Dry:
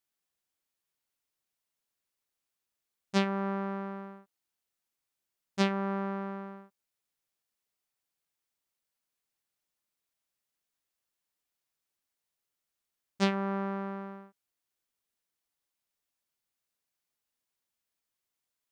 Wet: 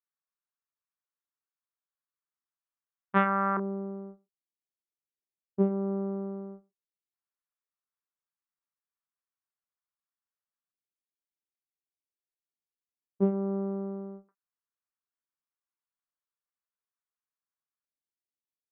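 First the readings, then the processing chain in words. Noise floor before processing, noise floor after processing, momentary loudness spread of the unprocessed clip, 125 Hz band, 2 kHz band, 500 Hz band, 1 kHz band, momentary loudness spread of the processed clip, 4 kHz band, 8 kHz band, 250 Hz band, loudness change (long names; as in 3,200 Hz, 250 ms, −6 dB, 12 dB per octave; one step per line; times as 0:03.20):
below −85 dBFS, below −85 dBFS, 16 LU, can't be measured, +1.5 dB, +3.0 dB, +3.5 dB, 16 LU, below −15 dB, below −20 dB, +2.0 dB, +2.5 dB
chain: noise gate −44 dBFS, range −17 dB
parametric band 1,100 Hz +8.5 dB 0.58 octaves
auto-filter low-pass square 0.14 Hz 380–1,600 Hz
double-tracking delay 27 ms −10 dB
downsampling to 8,000 Hz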